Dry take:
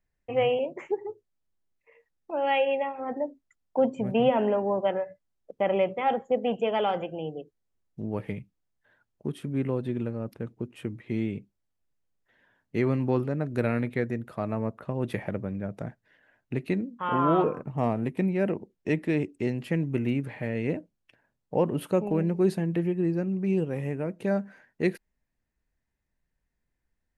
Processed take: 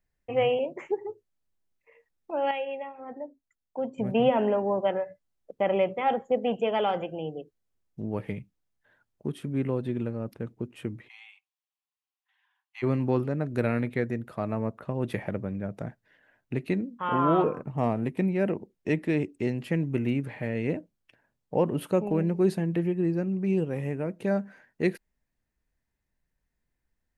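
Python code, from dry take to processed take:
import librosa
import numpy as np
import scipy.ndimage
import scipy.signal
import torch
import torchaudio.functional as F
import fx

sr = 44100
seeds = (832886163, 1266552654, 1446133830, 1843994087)

y = fx.cheby_ripple_highpass(x, sr, hz=750.0, ripple_db=9, at=(11.07, 12.82), fade=0.02)
y = fx.edit(y, sr, fx.clip_gain(start_s=2.51, length_s=1.47, db=-8.0), tone=tone)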